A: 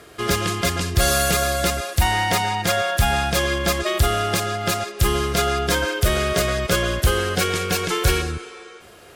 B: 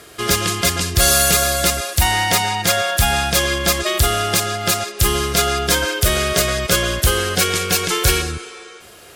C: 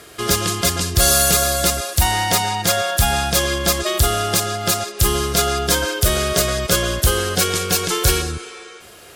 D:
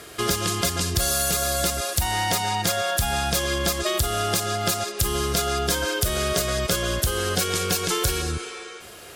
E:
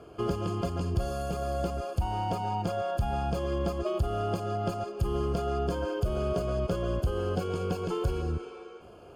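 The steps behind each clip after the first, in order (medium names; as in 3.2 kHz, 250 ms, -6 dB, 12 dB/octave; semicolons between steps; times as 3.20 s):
treble shelf 3 kHz +8 dB; trim +1 dB
dynamic bell 2.2 kHz, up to -5 dB, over -35 dBFS, Q 1.4
compression, threshold -20 dBFS, peak gain reduction 10 dB
boxcar filter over 23 samples; trim -2.5 dB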